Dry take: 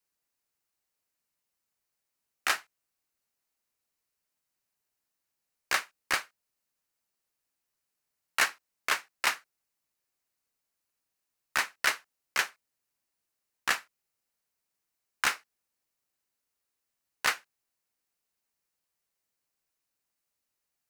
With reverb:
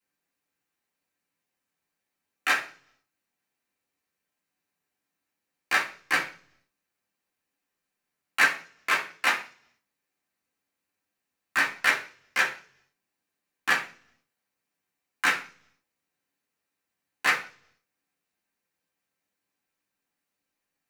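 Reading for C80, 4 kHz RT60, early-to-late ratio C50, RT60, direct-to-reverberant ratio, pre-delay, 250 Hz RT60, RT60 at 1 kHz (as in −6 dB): 15.5 dB, 0.55 s, 10.0 dB, 0.45 s, −6.5 dB, 3 ms, 0.70 s, 0.40 s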